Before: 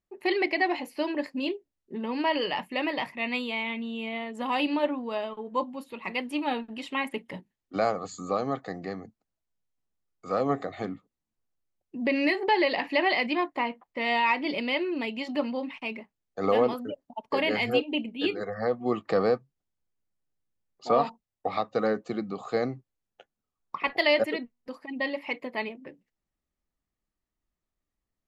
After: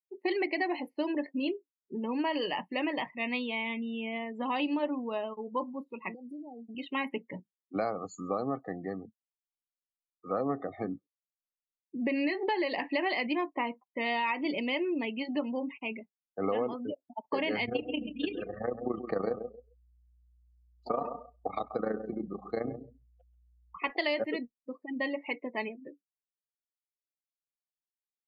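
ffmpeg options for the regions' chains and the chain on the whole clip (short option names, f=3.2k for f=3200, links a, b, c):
-filter_complex "[0:a]asettb=1/sr,asplit=3[a][b][c];[a]atrim=end=6.144[d];[b]atrim=start=6.14:end=6.75,asetpts=PTS-STARTPTS,afade=t=in:d=0.004:c=qsin,afade=t=out:st=0.606:d=0.004:c=qsin,acompressor=threshold=-39dB:ratio=10:attack=3.2:release=140:knee=1:detection=peak,asuperstop=centerf=1900:order=20:qfactor=0.56[e];[c]atrim=start=6.746[f];[d][e]acrossfade=d=0.004:c1=hsin:c2=qsin[g];[g][f]acrossfade=d=0.004:c1=qsin:c2=hsin,asettb=1/sr,asplit=3[h][i][j];[h]atrim=end=17.654[k];[i]atrim=start=17.65:end=23.77,asetpts=PTS-STARTPTS,afade=t=in:d=0.004:c=qsin,afade=t=out:st=6.116:d=0.004:c=qsin,tremolo=f=27:d=0.788,aeval=exprs='val(0)+0.00141*(sin(2*PI*60*n/s)+sin(2*PI*2*60*n/s)/2+sin(2*PI*3*60*n/s)/3+sin(2*PI*4*60*n/s)/4+sin(2*PI*5*60*n/s)/5)':c=same,aecho=1:1:134|268|402:0.299|0.0806|0.0218,atrim=end_sample=269892[l];[j]atrim=start=23.766[m];[k][l]acrossfade=d=0.004:c1=hsin:c2=qsin[n];[n][m]acrossfade=d=0.004:c1=qsin:c2=hsin,afftdn=nr=34:nf=-39,equalizer=f=310:w=2.3:g=3.5,acompressor=threshold=-24dB:ratio=6,volume=-2.5dB"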